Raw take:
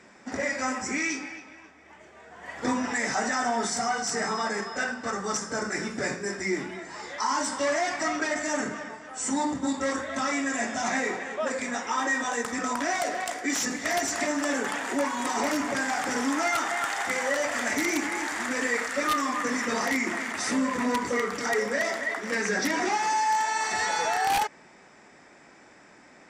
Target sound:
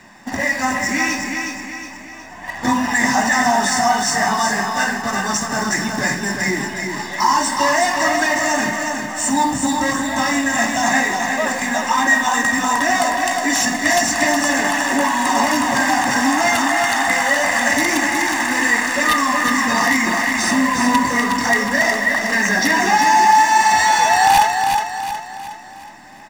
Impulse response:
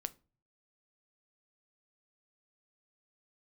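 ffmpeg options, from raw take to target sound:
-filter_complex "[0:a]aecho=1:1:1.1:0.7,asplit=2[a][b];[b]acrusher=bits=6:dc=4:mix=0:aa=0.000001,volume=-9.5dB[c];[a][c]amix=inputs=2:normalize=0,aecho=1:1:365|730|1095|1460|1825|2190:0.562|0.253|0.114|0.0512|0.0231|0.0104,volume=5.5dB"

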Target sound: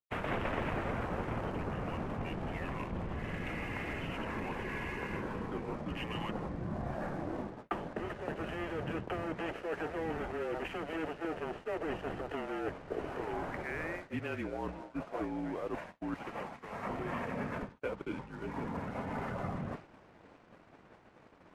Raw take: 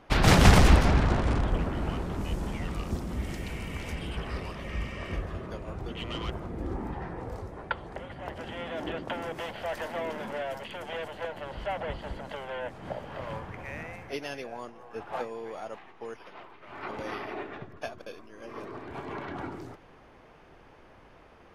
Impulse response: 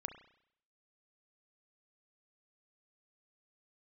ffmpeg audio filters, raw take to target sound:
-filter_complex "[0:a]asplit=2[a][b];[b]acontrast=68,volume=-1dB[c];[a][c]amix=inputs=2:normalize=0,aemphasis=mode=reproduction:type=50fm,highpass=f=230:t=q:w=0.5412,highpass=f=230:t=q:w=1.307,lowpass=f=3.1k:t=q:w=0.5176,lowpass=f=3.1k:t=q:w=0.7071,lowpass=f=3.1k:t=q:w=1.932,afreqshift=-170,areverse,acompressor=threshold=-34dB:ratio=5,areverse,aeval=exprs='sgn(val(0))*max(abs(val(0))-0.00178,0)':c=same,agate=range=-33dB:threshold=-41dB:ratio=3:detection=peak" -ar 32000 -c:a libmp3lame -b:a 56k

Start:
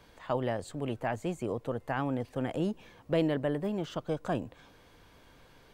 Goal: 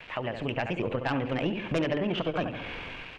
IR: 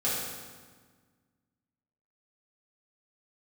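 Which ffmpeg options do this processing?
-af "dynaudnorm=f=290:g=7:m=14dB,aecho=1:1:125|250|375|500:0.282|0.0986|0.0345|0.0121,acrusher=bits=8:mix=0:aa=0.000001,lowpass=f=2.6k:t=q:w=4.2,aeval=exprs='1.06*(cos(1*acos(clip(val(0)/1.06,-1,1)))-cos(1*PI/2))+0.0944*(cos(4*acos(clip(val(0)/1.06,-1,1)))-cos(4*PI/2))+0.376*(cos(5*acos(clip(val(0)/1.06,-1,1)))-cos(5*PI/2))+0.0531*(cos(6*acos(clip(val(0)/1.06,-1,1)))-cos(6*PI/2))':c=same,acompressor=threshold=-32dB:ratio=3,bandreject=f=50:t=h:w=6,bandreject=f=100:t=h:w=6,bandreject=f=150:t=h:w=6,bandreject=f=200:t=h:w=6,bandreject=f=250:t=h:w=6,bandreject=f=300:t=h:w=6,bandreject=f=350:t=h:w=6,bandreject=f=400:t=h:w=6,bandreject=f=450:t=h:w=6,bandreject=f=500:t=h:w=6,atempo=1.8"

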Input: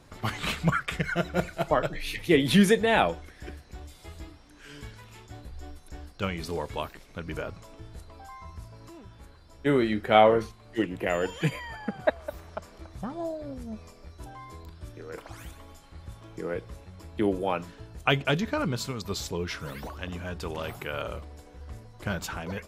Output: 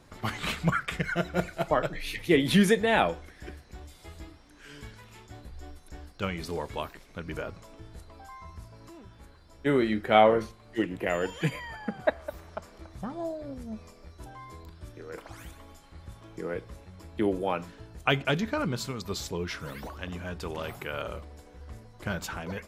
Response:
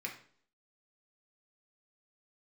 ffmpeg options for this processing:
-filter_complex "[0:a]asplit=2[a][b];[1:a]atrim=start_sample=2205,lowpass=2.4k[c];[b][c]afir=irnorm=-1:irlink=0,volume=-16dB[d];[a][d]amix=inputs=2:normalize=0,volume=-1.5dB"

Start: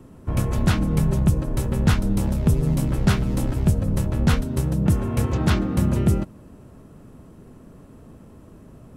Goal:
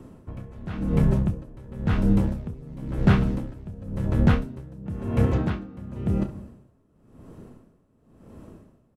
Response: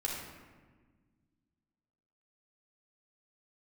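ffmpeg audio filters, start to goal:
-filter_complex "[0:a]equalizer=f=400:w=0.53:g=2.5,acrossover=split=3200[a][b];[b]acompressor=threshold=-48dB:ratio=4:attack=1:release=60[c];[a][c]amix=inputs=2:normalize=0,highshelf=f=9.3k:g=-5,aecho=1:1:30|67:0.299|0.141,asplit=2[d][e];[1:a]atrim=start_sample=2205,adelay=9[f];[e][f]afir=irnorm=-1:irlink=0,volume=-22.5dB[g];[d][g]amix=inputs=2:normalize=0,aeval=exprs='val(0)*pow(10,-21*(0.5-0.5*cos(2*PI*0.95*n/s))/20)':c=same"

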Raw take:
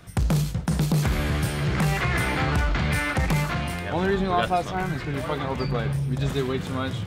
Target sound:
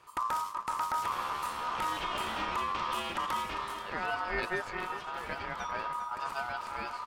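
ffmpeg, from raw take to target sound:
-filter_complex "[0:a]aeval=exprs='val(0)*sin(2*PI*1100*n/s)':c=same,asplit=2[a][b];[b]aecho=0:1:400:0.266[c];[a][c]amix=inputs=2:normalize=0,volume=-8dB"

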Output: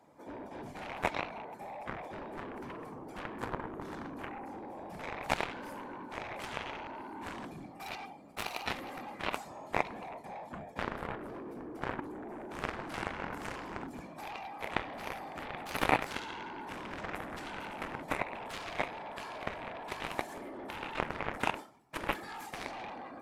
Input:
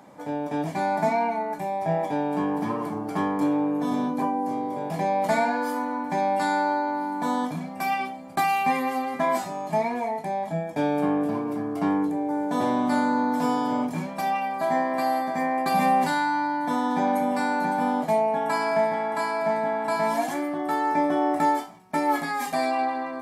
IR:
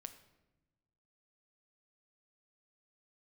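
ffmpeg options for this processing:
-af "afftfilt=real='hypot(re,im)*cos(2*PI*random(0))':imag='hypot(re,im)*sin(2*PI*random(1))':win_size=512:overlap=0.75,afreqshift=22,aeval=exprs='0.178*(cos(1*acos(clip(val(0)/0.178,-1,1)))-cos(1*PI/2))+0.0708*(cos(3*acos(clip(val(0)/0.178,-1,1)))-cos(3*PI/2))':c=same,volume=7dB"

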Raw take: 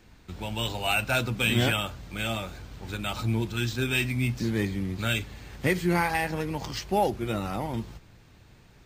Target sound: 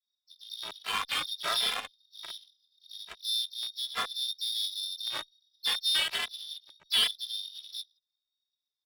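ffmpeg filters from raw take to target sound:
-filter_complex "[0:a]equalizer=f=130:t=o:w=0.27:g=-9.5,acrossover=split=2000[a][b];[b]adelay=40[c];[a][c]amix=inputs=2:normalize=0,acrossover=split=420[d][e];[e]acrusher=bits=3:mix=0:aa=0.000001[f];[d][f]amix=inputs=2:normalize=0,lowpass=f=3.2k:t=q:w=0.5098,lowpass=f=3.2k:t=q:w=0.6013,lowpass=f=3.2k:t=q:w=0.9,lowpass=f=3.2k:t=q:w=2.563,afreqshift=-3800,adynamicsmooth=sensitivity=6.5:basefreq=610,asplit=4[g][h][i][j];[h]asetrate=52444,aresample=44100,atempo=0.840896,volume=-12dB[k];[i]asetrate=58866,aresample=44100,atempo=0.749154,volume=-14dB[l];[j]asetrate=66075,aresample=44100,atempo=0.66742,volume=-12dB[m];[g][k][l][m]amix=inputs=4:normalize=0,asplit=2[n][o];[o]adelay=2.6,afreqshift=1.3[p];[n][p]amix=inputs=2:normalize=1"

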